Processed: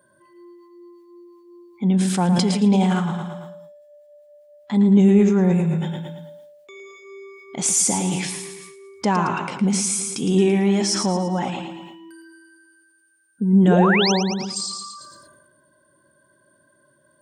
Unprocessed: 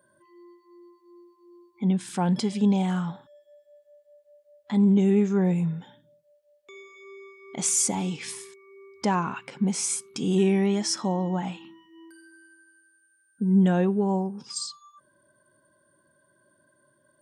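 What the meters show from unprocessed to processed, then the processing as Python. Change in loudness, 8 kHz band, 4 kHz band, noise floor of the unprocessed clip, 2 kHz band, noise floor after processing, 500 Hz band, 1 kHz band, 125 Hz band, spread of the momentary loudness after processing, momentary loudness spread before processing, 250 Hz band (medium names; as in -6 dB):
+5.5 dB, +5.5 dB, +9.0 dB, -67 dBFS, +10.5 dB, -61 dBFS, +6.0 dB, +7.0 dB, +6.0 dB, 17 LU, 13 LU, +5.5 dB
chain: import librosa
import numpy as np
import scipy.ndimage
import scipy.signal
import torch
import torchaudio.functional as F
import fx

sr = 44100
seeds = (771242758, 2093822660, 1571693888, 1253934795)

y = fx.spec_paint(x, sr, seeds[0], shape='rise', start_s=13.67, length_s=0.45, low_hz=300.0, high_hz=6500.0, level_db=-26.0)
y = fx.echo_feedback(y, sr, ms=112, feedback_pct=47, wet_db=-8.5)
y = fx.sustainer(y, sr, db_per_s=36.0)
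y = y * 10.0 ** (4.0 / 20.0)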